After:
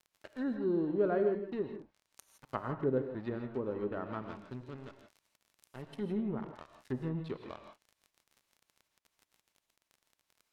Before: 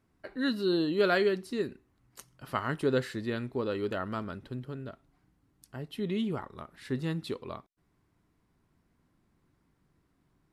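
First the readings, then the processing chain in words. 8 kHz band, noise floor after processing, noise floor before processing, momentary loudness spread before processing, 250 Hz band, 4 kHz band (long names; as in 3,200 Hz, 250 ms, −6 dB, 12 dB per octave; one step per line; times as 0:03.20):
below −10 dB, −85 dBFS, −73 dBFS, 17 LU, −3.5 dB, −19.0 dB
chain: dead-zone distortion −43 dBFS
surface crackle 34 per second −45 dBFS
treble cut that deepens with the level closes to 770 Hz, closed at −29 dBFS
reverb whose tail is shaped and stops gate 190 ms rising, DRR 6 dB
level −2.5 dB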